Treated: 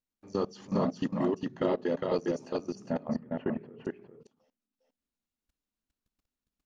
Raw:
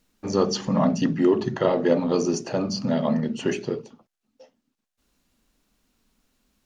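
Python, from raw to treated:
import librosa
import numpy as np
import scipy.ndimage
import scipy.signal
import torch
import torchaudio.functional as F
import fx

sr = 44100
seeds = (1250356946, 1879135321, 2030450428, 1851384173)

y = fx.lowpass(x, sr, hz=2100.0, slope=24, at=(2.75, 3.8))
y = fx.level_steps(y, sr, step_db=22)
y = y + 10.0 ** (-3.0 / 20.0) * np.pad(y, (int(407 * sr / 1000.0), 0))[:len(y)]
y = y * librosa.db_to_amplitude(-6.0)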